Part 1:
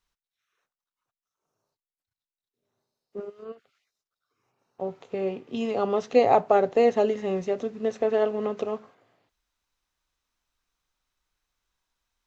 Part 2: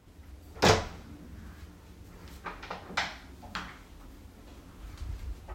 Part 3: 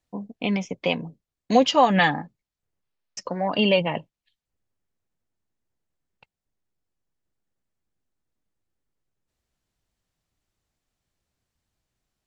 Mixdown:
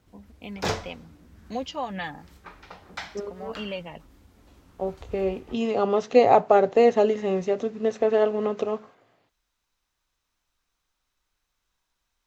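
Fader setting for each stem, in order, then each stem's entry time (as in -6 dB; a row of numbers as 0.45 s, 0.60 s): +2.5 dB, -5.0 dB, -14.0 dB; 0.00 s, 0.00 s, 0.00 s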